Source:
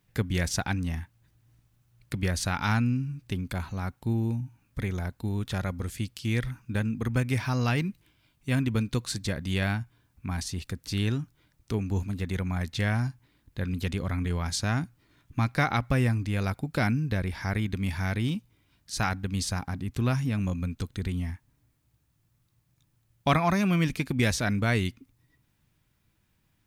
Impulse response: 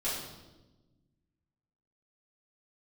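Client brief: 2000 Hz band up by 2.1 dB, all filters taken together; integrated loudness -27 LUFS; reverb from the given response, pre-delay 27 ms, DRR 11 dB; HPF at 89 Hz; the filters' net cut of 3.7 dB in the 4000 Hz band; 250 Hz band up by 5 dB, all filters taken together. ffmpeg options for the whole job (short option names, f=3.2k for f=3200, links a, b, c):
-filter_complex "[0:a]highpass=89,equalizer=f=250:t=o:g=6.5,equalizer=f=2k:t=o:g=4,equalizer=f=4k:t=o:g=-6,asplit=2[a][b];[1:a]atrim=start_sample=2205,adelay=27[c];[b][c]afir=irnorm=-1:irlink=0,volume=-17dB[d];[a][d]amix=inputs=2:normalize=0"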